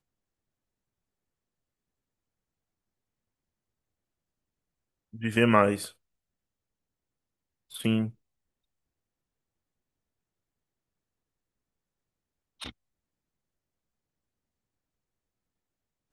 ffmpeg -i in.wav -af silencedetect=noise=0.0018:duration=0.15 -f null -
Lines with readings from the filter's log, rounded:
silence_start: 0.00
silence_end: 5.13 | silence_duration: 5.13
silence_start: 5.93
silence_end: 7.70 | silence_duration: 1.77
silence_start: 8.15
silence_end: 12.60 | silence_duration: 4.45
silence_start: 12.72
silence_end: 16.12 | silence_duration: 3.41